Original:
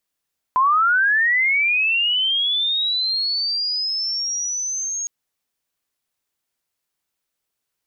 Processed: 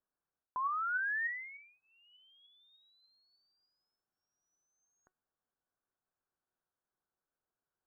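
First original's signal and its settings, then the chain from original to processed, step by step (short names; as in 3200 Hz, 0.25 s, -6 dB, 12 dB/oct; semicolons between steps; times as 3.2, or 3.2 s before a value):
chirp linear 1000 Hz -> 6600 Hz -13 dBFS -> -23 dBFS 4.51 s
elliptic low-pass 1600 Hz, stop band 40 dB; reverse; compressor 16:1, threshold -28 dBFS; reverse; resonator 370 Hz, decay 0.19 s, harmonics all, mix 50%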